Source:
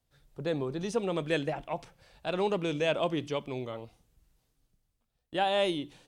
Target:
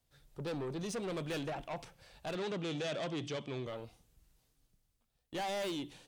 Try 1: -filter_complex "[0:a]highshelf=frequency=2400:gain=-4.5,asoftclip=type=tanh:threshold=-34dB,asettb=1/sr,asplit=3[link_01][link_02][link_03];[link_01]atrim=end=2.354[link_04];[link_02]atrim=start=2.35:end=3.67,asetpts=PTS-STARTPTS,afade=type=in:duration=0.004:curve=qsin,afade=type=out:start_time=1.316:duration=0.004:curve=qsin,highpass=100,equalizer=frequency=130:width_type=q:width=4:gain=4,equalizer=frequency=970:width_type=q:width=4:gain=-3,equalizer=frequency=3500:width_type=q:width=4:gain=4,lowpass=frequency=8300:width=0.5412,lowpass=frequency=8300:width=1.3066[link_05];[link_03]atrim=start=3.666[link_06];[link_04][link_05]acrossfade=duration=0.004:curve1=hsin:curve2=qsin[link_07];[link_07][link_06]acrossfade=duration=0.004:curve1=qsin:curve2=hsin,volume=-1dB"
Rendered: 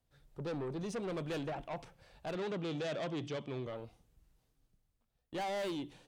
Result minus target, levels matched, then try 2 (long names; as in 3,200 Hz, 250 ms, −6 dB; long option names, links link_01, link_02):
4,000 Hz band −3.5 dB
-filter_complex "[0:a]highshelf=frequency=2400:gain=3.5,asoftclip=type=tanh:threshold=-34dB,asettb=1/sr,asplit=3[link_01][link_02][link_03];[link_01]atrim=end=2.354[link_04];[link_02]atrim=start=2.35:end=3.67,asetpts=PTS-STARTPTS,afade=type=in:duration=0.004:curve=qsin,afade=type=out:start_time=1.316:duration=0.004:curve=qsin,highpass=100,equalizer=frequency=130:width_type=q:width=4:gain=4,equalizer=frequency=970:width_type=q:width=4:gain=-3,equalizer=frequency=3500:width_type=q:width=4:gain=4,lowpass=frequency=8300:width=0.5412,lowpass=frequency=8300:width=1.3066[link_05];[link_03]atrim=start=3.666[link_06];[link_04][link_05]acrossfade=duration=0.004:curve1=hsin:curve2=qsin[link_07];[link_07][link_06]acrossfade=duration=0.004:curve1=qsin:curve2=hsin,volume=-1dB"